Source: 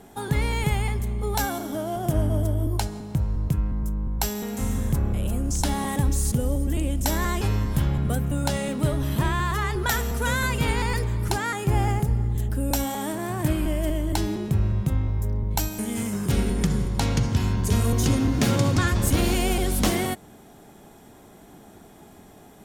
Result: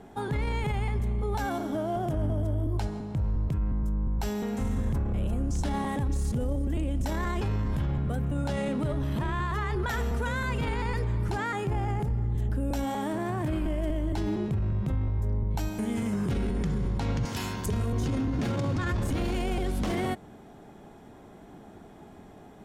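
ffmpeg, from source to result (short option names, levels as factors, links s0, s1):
-filter_complex "[0:a]asettb=1/sr,asplit=3[s0][s1][s2];[s0]atrim=end=17.254[s3];[s1]atrim=start=17.25:end=17.66,asetpts=PTS-STARTPTS,afade=t=in:d=0.004:c=qsin,afade=t=out:st=0.406:d=0.004:c=qsin,aemphasis=mode=production:type=riaa[s4];[s2]atrim=start=17.656[s5];[s3][s4]acrossfade=d=0.004:c1=hsin:c2=qsin[s6];[s6][s5]acrossfade=d=0.004:c1=qsin:c2=hsin,aemphasis=mode=reproduction:type=75kf,alimiter=limit=0.0841:level=0:latency=1:release=20"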